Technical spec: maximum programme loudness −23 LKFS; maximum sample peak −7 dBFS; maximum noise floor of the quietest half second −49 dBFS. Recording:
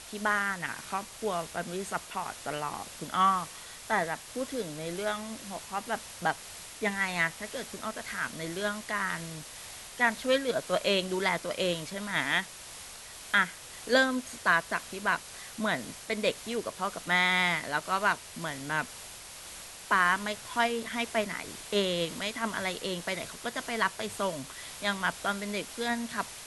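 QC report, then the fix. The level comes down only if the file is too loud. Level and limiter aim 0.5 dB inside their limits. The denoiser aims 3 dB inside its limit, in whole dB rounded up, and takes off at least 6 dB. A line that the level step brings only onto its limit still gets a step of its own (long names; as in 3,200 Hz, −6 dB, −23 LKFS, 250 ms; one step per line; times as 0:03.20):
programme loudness −30.5 LKFS: in spec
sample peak −10.0 dBFS: in spec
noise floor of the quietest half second −46 dBFS: out of spec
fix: broadband denoise 6 dB, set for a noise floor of −46 dBFS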